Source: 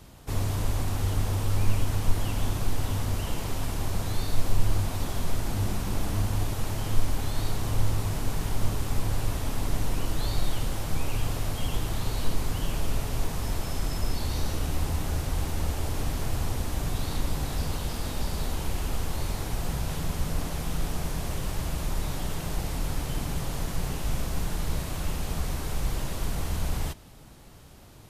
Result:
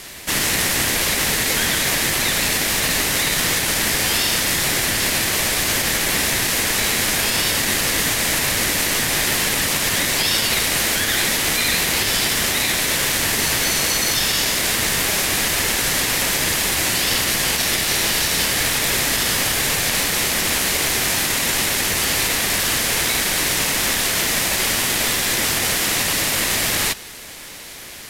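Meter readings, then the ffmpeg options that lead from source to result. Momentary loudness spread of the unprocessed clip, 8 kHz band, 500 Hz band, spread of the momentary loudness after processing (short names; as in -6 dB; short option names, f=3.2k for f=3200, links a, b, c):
4 LU, +21.5 dB, +10.5 dB, 1 LU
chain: -af "highpass=f=960:w=0.5412,highpass=f=960:w=1.3066,aeval=exprs='val(0)*sin(2*PI*840*n/s)':c=same,alimiter=level_in=31dB:limit=-1dB:release=50:level=0:latency=1,volume=-6dB"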